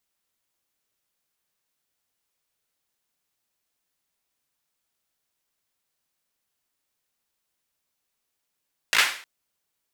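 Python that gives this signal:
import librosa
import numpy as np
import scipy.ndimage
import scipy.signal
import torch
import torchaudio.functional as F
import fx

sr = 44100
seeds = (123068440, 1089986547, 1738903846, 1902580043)

y = fx.drum_clap(sr, seeds[0], length_s=0.31, bursts=4, spacing_ms=18, hz=2000.0, decay_s=0.46)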